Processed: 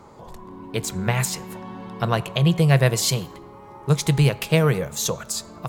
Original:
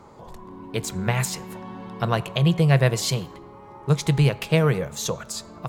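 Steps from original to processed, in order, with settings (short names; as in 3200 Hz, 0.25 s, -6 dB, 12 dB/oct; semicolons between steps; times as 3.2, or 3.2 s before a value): high shelf 7000 Hz +3 dB, from 2.55 s +8 dB; gain +1 dB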